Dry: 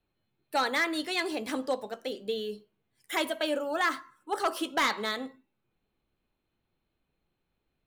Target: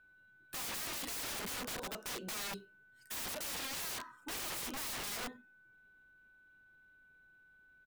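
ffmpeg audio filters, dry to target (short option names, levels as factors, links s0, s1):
-af "asetrate=41625,aresample=44100,atempo=1.05946,aeval=exprs='val(0)+0.000708*sin(2*PI*1500*n/s)':c=same,aeval=exprs='(mod(70.8*val(0)+1,2)-1)/70.8':c=same,volume=1.12"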